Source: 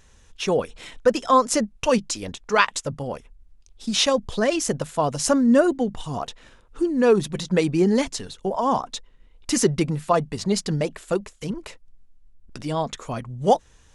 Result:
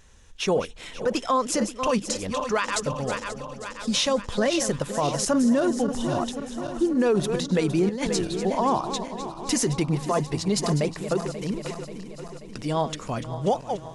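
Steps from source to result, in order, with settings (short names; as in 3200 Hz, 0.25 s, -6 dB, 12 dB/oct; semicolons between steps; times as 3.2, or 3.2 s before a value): regenerating reverse delay 0.267 s, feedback 75%, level -12 dB; limiter -14 dBFS, peak gain reduction 11.5 dB; 7.89–8.44 negative-ratio compressor -25 dBFS, ratio -0.5; 9.68–11.47 mismatched tape noise reduction decoder only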